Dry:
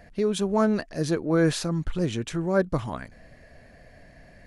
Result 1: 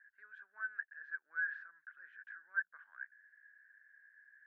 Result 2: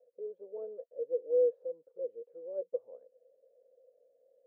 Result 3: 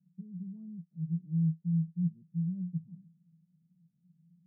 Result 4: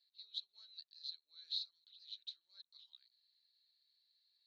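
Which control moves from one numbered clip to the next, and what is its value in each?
Butterworth band-pass, frequency: 1.6 kHz, 500 Hz, 170 Hz, 4 kHz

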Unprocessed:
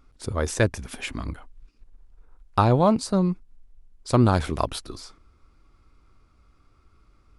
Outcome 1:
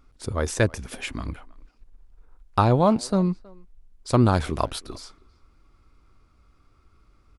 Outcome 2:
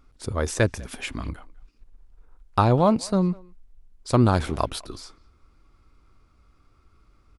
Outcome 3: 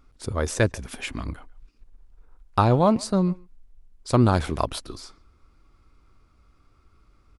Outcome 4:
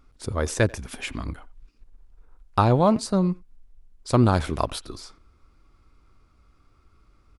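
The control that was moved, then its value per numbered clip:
speakerphone echo, time: 320 ms, 200 ms, 140 ms, 90 ms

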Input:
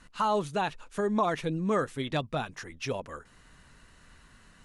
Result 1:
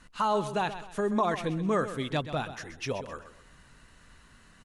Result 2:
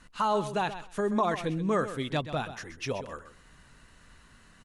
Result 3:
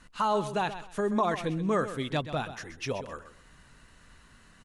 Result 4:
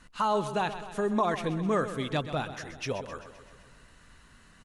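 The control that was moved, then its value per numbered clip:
feedback delay, feedback: 35%, 15%, 23%, 60%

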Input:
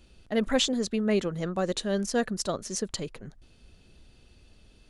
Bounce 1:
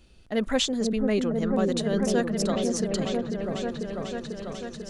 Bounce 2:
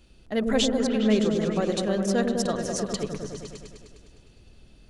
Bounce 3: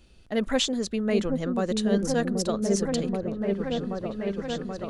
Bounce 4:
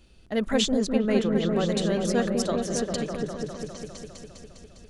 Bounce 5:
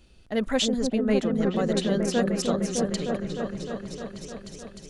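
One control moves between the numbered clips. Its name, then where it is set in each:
delay with an opening low-pass, time: 494 ms, 102 ms, 780 ms, 202 ms, 305 ms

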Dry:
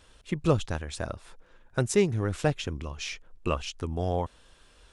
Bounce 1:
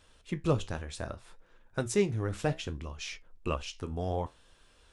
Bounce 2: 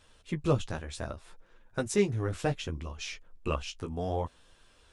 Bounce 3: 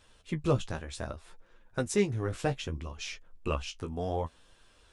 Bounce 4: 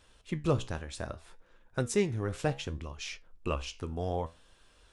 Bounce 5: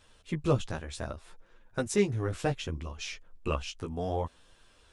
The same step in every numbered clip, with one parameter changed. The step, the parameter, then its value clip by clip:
flange, regen: -64%, -16%, +26%, +72%, +5%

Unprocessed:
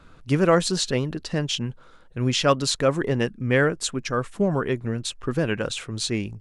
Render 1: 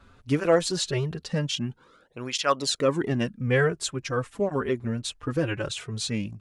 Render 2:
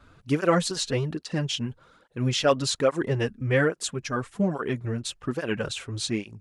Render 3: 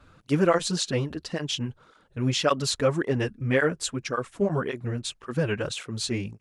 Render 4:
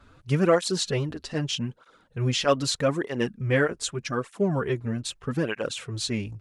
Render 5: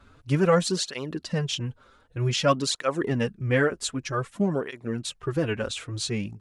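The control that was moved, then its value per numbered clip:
cancelling through-zero flanger, nulls at: 0.21 Hz, 1.2 Hz, 1.8 Hz, 0.81 Hz, 0.53 Hz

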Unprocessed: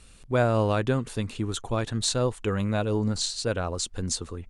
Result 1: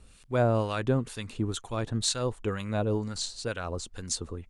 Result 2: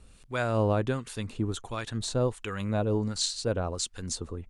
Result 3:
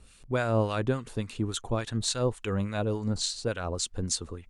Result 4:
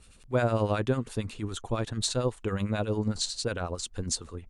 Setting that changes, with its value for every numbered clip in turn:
harmonic tremolo, rate: 2.1 Hz, 1.4 Hz, 3.5 Hz, 11 Hz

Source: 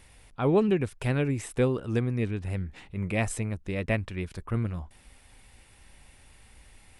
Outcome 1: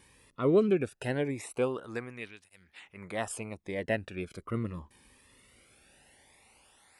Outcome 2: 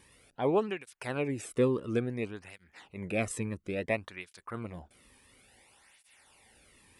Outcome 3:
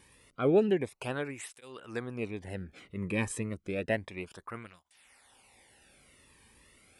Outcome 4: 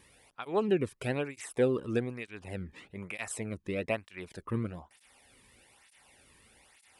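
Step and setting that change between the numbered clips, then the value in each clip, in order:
cancelling through-zero flanger, nulls at: 0.2 Hz, 0.58 Hz, 0.31 Hz, 1.1 Hz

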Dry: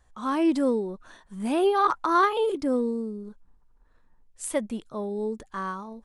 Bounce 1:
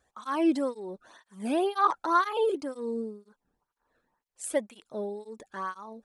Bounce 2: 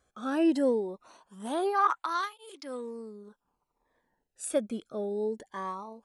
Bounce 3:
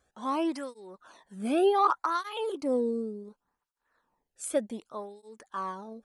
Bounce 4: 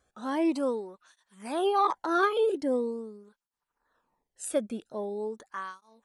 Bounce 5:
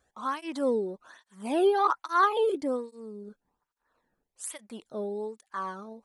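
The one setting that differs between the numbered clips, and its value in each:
cancelling through-zero flanger, nulls at: 2 Hz, 0.21 Hz, 0.67 Hz, 0.43 Hz, 1.2 Hz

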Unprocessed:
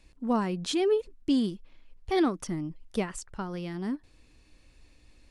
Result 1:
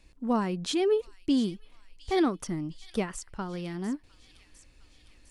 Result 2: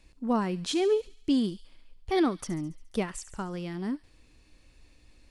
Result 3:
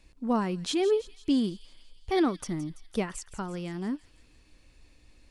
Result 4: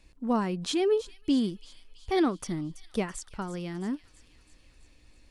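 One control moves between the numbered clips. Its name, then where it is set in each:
feedback echo behind a high-pass, time: 706 ms, 70 ms, 167 ms, 330 ms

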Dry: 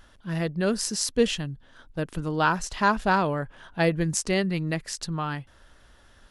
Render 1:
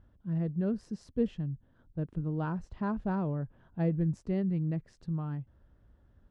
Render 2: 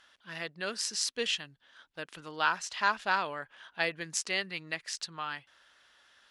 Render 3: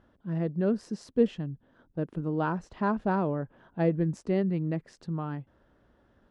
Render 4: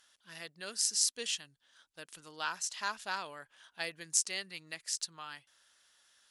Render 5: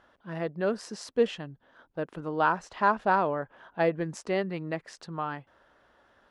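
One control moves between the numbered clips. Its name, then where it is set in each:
band-pass filter, frequency: 100 Hz, 3 kHz, 260 Hz, 7.9 kHz, 710 Hz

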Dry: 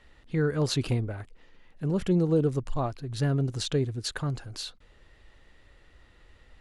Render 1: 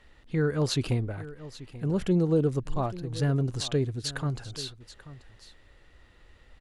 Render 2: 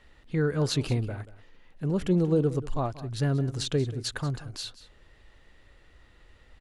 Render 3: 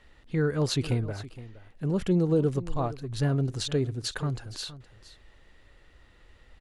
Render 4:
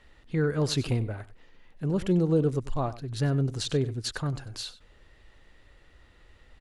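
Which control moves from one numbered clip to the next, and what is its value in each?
delay, time: 835 ms, 184 ms, 467 ms, 95 ms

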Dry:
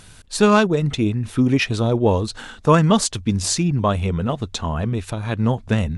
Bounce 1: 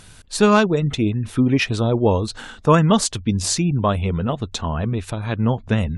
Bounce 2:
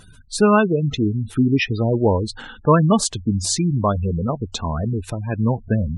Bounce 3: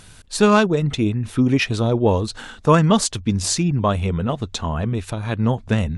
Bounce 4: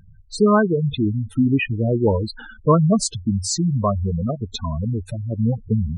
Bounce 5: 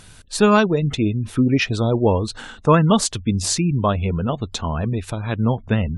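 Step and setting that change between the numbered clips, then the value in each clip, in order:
spectral gate, under each frame's peak: -45 dB, -20 dB, -60 dB, -10 dB, -35 dB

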